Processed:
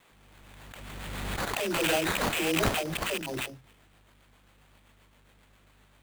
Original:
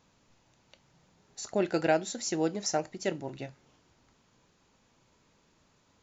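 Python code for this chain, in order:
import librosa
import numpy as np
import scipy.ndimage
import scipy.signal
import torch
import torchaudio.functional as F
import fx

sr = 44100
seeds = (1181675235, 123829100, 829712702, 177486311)

y = fx.rattle_buzz(x, sr, strikes_db=-42.0, level_db=-27.0)
y = fx.low_shelf(y, sr, hz=180.0, db=-8.5)
y = fx.add_hum(y, sr, base_hz=50, snr_db=26)
y = fx.band_shelf(y, sr, hz=3800.0, db=14.0, octaves=1.3)
y = fx.notch(y, sr, hz=2800.0, q=14.0)
y = fx.dispersion(y, sr, late='lows', ms=119.0, hz=440.0)
y = fx.rotary(y, sr, hz=7.5)
y = fx.sample_hold(y, sr, seeds[0], rate_hz=5500.0, jitter_pct=20)
y = fx.pre_swell(y, sr, db_per_s=23.0)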